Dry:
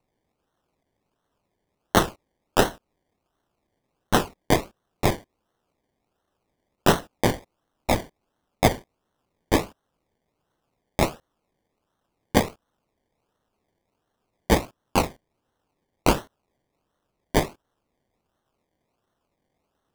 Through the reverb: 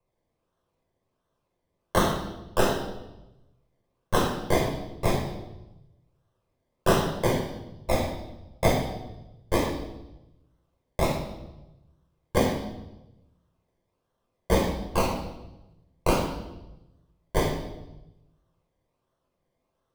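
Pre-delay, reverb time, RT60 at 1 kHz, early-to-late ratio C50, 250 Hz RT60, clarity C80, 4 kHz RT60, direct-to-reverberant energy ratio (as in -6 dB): 3 ms, 1.0 s, 0.90 s, 3.0 dB, 1.2 s, 6.5 dB, 0.90 s, -2.0 dB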